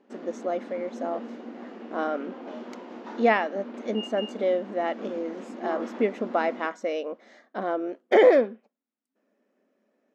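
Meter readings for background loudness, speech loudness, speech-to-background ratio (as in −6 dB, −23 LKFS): −39.5 LKFS, −27.0 LKFS, 12.5 dB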